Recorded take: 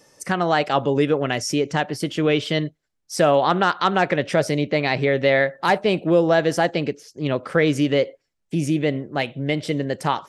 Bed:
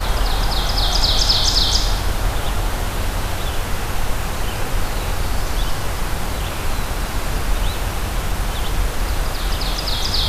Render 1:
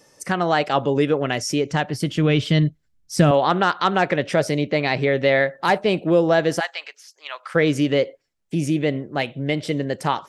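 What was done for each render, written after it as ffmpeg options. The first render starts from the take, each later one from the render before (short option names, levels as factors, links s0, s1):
-filter_complex "[0:a]asettb=1/sr,asplit=3[s0][s1][s2];[s0]atrim=end=1.534[s3];[s1]atrim=start=1.53:end=3.31,asetpts=PTS-STARTPTS,afade=t=in:d=0.004:c=qsin,afade=t=out:st=1.776:d=0.004:c=qsin,asubboost=boost=11.5:cutoff=210[s4];[s2]atrim=start=3.306[s5];[s3][s4]acrossfade=d=0.004:c1=hsin:c2=qsin[s6];[s6][s5]acrossfade=d=0.004:c1=qsin:c2=hsin,asplit=3[s7][s8][s9];[s7]afade=t=out:st=6.59:d=0.02[s10];[s8]highpass=f=940:w=0.5412,highpass=f=940:w=1.3066,afade=t=in:st=6.59:d=0.02,afade=t=out:st=7.54:d=0.02[s11];[s9]afade=t=in:st=7.54:d=0.02[s12];[s10][s11][s12]amix=inputs=3:normalize=0"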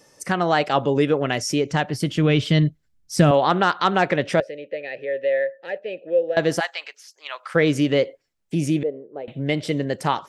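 -filter_complex "[0:a]asettb=1/sr,asplit=3[s0][s1][s2];[s0]atrim=end=4.404[s3];[s1]atrim=start=4.4:end=6.37,asetpts=PTS-STARTPTS,afade=t=in:d=0.004:c=qsin,afade=t=out:st=1.966:d=0.004:c=qsin,asplit=3[s4][s5][s6];[s4]bandpass=f=530:t=q:w=8,volume=1[s7];[s5]bandpass=f=1840:t=q:w=8,volume=0.501[s8];[s6]bandpass=f=2480:t=q:w=8,volume=0.355[s9];[s7][s8][s9]amix=inputs=3:normalize=0[s10];[s2]atrim=start=6.366[s11];[s3][s10]acrossfade=d=0.004:c1=hsin:c2=qsin[s12];[s12][s11]acrossfade=d=0.004:c1=qsin:c2=hsin,asettb=1/sr,asplit=3[s13][s14][s15];[s13]atrim=end=8.834[s16];[s14]atrim=start=8.83:end=9.28,asetpts=PTS-STARTPTS,afade=t=in:d=0.004:c=qsin,afade=t=out:st=0.446:d=0.004:c=qsin,bandpass=f=460:t=q:w=4.2[s17];[s15]atrim=start=9.276[s18];[s16][s17]acrossfade=d=0.004:c1=hsin:c2=qsin[s19];[s19][s18]acrossfade=d=0.004:c1=qsin:c2=hsin"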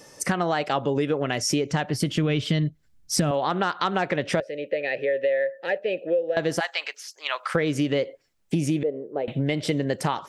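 -filter_complex "[0:a]asplit=2[s0][s1];[s1]alimiter=limit=0.211:level=0:latency=1:release=411,volume=1[s2];[s0][s2]amix=inputs=2:normalize=0,acompressor=threshold=0.0891:ratio=5"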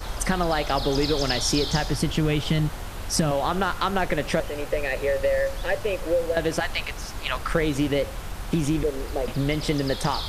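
-filter_complex "[1:a]volume=0.237[s0];[0:a][s0]amix=inputs=2:normalize=0"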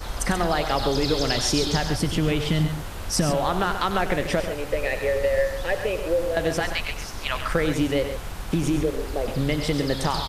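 -af "aecho=1:1:96.21|134.1:0.282|0.316"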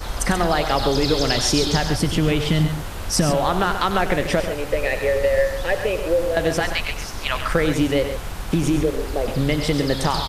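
-af "volume=1.5"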